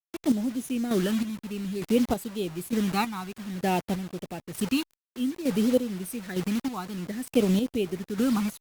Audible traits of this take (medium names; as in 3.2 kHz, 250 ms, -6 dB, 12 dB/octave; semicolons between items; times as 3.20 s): phasing stages 12, 0.56 Hz, lowest notch 540–1900 Hz; a quantiser's noise floor 6-bit, dither none; chopped level 1.1 Hz, depth 60%, duty 35%; Opus